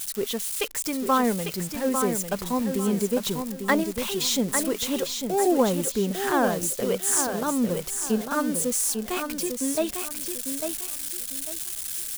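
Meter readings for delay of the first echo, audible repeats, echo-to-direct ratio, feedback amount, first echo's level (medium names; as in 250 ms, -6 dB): 849 ms, 3, -6.0 dB, 29%, -6.5 dB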